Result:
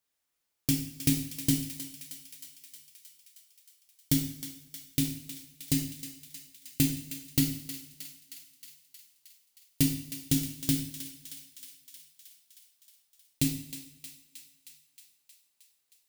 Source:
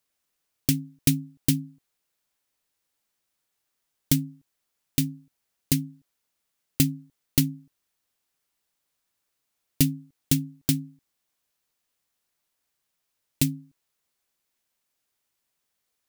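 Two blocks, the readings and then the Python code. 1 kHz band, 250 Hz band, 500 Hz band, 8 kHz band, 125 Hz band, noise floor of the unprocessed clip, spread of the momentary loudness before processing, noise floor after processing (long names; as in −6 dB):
can't be measured, −3.0 dB, −3.5 dB, −2.0 dB, −5.0 dB, −80 dBFS, 16 LU, −77 dBFS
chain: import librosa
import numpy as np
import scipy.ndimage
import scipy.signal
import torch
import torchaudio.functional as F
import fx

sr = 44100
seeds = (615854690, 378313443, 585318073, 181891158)

y = fx.echo_thinned(x, sr, ms=313, feedback_pct=71, hz=750.0, wet_db=-11.0)
y = fx.rev_double_slope(y, sr, seeds[0], early_s=0.59, late_s=1.9, knee_db=-19, drr_db=0.0)
y = F.gain(torch.from_numpy(y), -6.0).numpy()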